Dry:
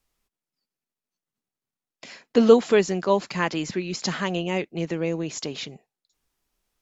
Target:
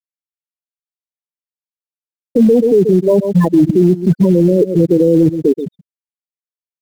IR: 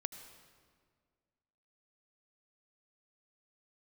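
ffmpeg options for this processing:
-filter_complex "[0:a]areverse,acompressor=threshold=-28dB:ratio=4,areverse,afftfilt=real='re*gte(hypot(re,im),0.126)':imag='im*gte(hypot(re,im),0.126)':win_size=1024:overlap=0.75,lowpass=1.2k,asplit=2[a][b];[b]aecho=0:1:129:0.106[c];[a][c]amix=inputs=2:normalize=0,acrusher=bits=4:mode=log:mix=0:aa=0.000001,lowshelf=f=750:t=q:w=1.5:g=11.5,alimiter=level_in=22dB:limit=-1dB:release=50:level=0:latency=1,volume=-2.5dB"

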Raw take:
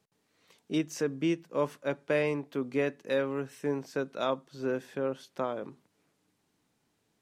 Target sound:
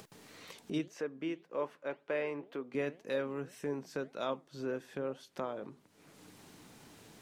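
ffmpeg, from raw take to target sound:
-filter_complex "[0:a]asettb=1/sr,asplit=3[a][b][c];[a]atrim=end=0.884[d];[b]atrim=start=0.88:end=2.75,asetpts=PTS-STARTPTS,afade=t=in:d=0.004:c=qsin,afade=t=out:st=1.866:d=0.004:c=qsin,bass=f=250:g=-12,treble=f=4k:g=-12[e];[c]atrim=start=2.746[f];[d][e]acrossfade=d=0.004:c1=hsin:c2=qsin[g];[g][f]acrossfade=d=0.004:c1=qsin:c2=hsin,flanger=delay=1.6:depth=5.6:regen=88:speed=1.9:shape=triangular,acompressor=mode=upward:threshold=-34dB:ratio=2.5,volume=-1.5dB"

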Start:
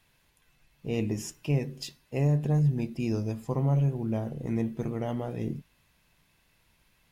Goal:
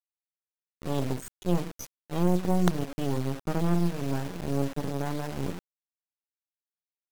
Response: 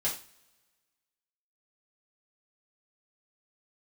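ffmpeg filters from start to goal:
-af "afftdn=nr=21:nf=-36,acrusher=bits=4:dc=4:mix=0:aa=0.000001,asetrate=53981,aresample=44100,atempo=0.816958,volume=3.5dB"

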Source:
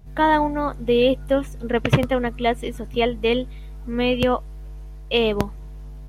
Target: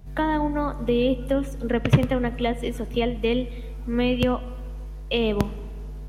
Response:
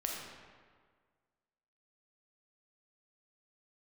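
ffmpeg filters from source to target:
-filter_complex "[0:a]acrossover=split=300[a][b];[b]acompressor=threshold=-25dB:ratio=5[c];[a][c]amix=inputs=2:normalize=0,asplit=2[d][e];[1:a]atrim=start_sample=2205[f];[e][f]afir=irnorm=-1:irlink=0,volume=-14.5dB[g];[d][g]amix=inputs=2:normalize=0"

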